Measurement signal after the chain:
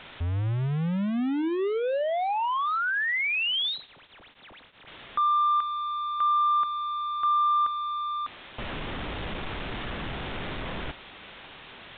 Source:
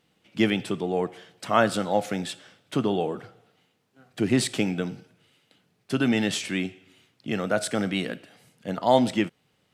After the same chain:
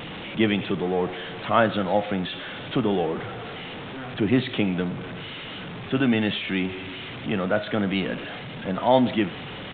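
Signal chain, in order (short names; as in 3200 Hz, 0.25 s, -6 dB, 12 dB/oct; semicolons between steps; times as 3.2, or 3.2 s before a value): zero-crossing step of -29 dBFS; downsampling 8000 Hz; two-slope reverb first 0.58 s, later 1.7 s, DRR 19.5 dB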